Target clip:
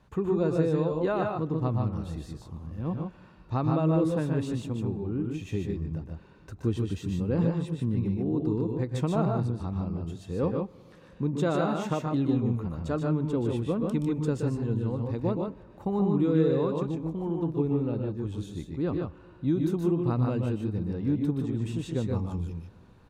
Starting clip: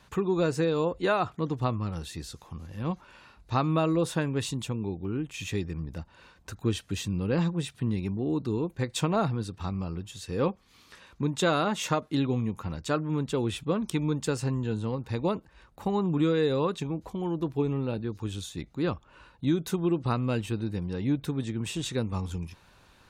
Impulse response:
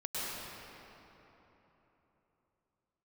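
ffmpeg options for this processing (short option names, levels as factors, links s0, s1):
-filter_complex "[0:a]tiltshelf=f=1200:g=7,aecho=1:1:124|149:0.473|0.631,asplit=2[s0][s1];[1:a]atrim=start_sample=2205[s2];[s1][s2]afir=irnorm=-1:irlink=0,volume=0.0473[s3];[s0][s3]amix=inputs=2:normalize=0,volume=0.447"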